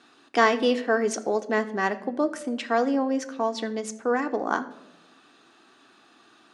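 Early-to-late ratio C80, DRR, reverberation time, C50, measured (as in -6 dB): 18.5 dB, 7.0 dB, 0.95 s, 15.5 dB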